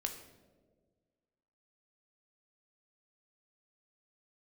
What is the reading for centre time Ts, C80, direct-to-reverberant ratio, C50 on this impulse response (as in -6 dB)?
21 ms, 10.5 dB, 4.0 dB, 8.5 dB